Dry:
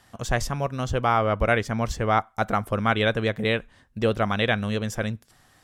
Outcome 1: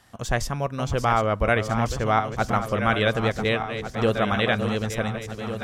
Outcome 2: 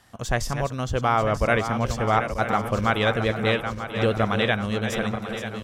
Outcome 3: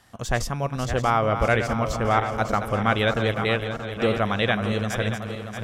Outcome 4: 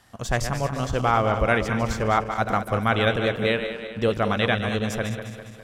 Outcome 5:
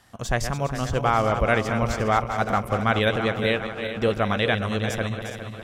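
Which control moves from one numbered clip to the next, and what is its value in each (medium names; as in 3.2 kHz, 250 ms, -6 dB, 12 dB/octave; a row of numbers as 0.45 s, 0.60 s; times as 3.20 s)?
backward echo that repeats, time: 726 ms, 469 ms, 315 ms, 102 ms, 204 ms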